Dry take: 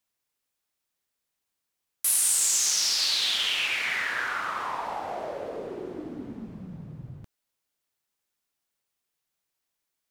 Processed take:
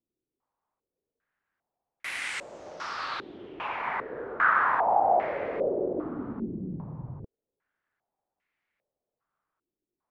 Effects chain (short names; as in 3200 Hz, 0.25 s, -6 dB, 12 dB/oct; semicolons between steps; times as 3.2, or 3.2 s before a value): stepped low-pass 2.5 Hz 350–2100 Hz; gain +2 dB